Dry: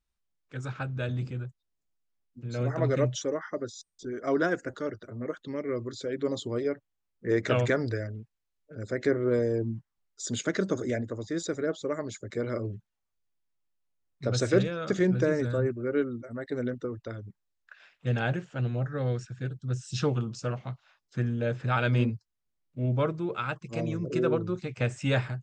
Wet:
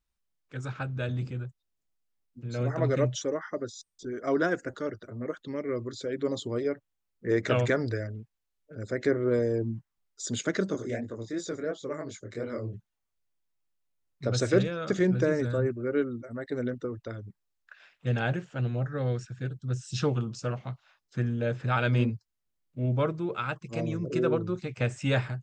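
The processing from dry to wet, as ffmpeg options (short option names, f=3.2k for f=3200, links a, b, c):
-filter_complex "[0:a]asplit=3[a][b][c];[a]afade=t=out:st=10.69:d=0.02[d];[b]flanger=delay=20:depth=6.5:speed=2.8,afade=t=in:st=10.69:d=0.02,afade=t=out:st=12.73:d=0.02[e];[c]afade=t=in:st=12.73:d=0.02[f];[d][e][f]amix=inputs=3:normalize=0"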